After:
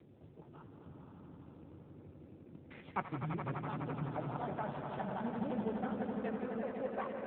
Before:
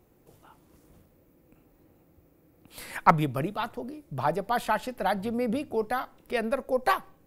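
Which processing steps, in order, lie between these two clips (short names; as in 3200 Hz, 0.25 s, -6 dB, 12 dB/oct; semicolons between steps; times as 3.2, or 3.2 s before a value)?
slices in reverse order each 0.104 s, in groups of 2; LPF 2500 Hz 6 dB/oct; low shelf 290 Hz +8.5 dB; on a send at -19 dB: reverb, pre-delay 58 ms; on the sum: flange 1.6 Hz, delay 5.1 ms, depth 8.6 ms, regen -38%; added harmonics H 2 -6 dB, 4 -29 dB, 8 -34 dB, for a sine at -5 dBFS; short-mantissa float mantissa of 6-bit; compressor 2:1, threshold -53 dBFS, peak gain reduction 21.5 dB; swelling echo 84 ms, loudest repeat 5, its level -8 dB; gain +3.5 dB; AMR-NB 7.4 kbps 8000 Hz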